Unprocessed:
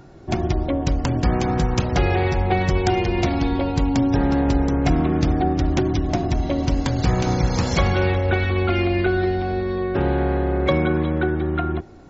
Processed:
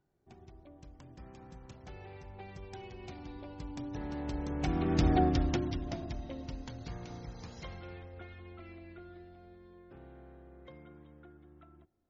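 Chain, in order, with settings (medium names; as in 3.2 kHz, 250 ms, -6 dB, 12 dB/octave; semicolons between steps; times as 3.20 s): Doppler pass-by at 5.17 s, 16 m/s, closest 3.5 m; dynamic bell 3.7 kHz, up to +4 dB, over -52 dBFS, Q 0.87; trim -6 dB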